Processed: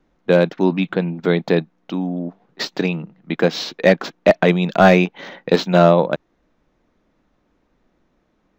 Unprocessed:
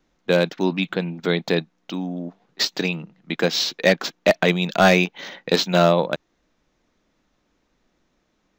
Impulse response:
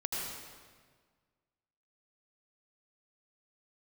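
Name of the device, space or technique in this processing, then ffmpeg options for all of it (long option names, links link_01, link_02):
through cloth: -af "highshelf=frequency=2800:gain=-14,volume=5dB"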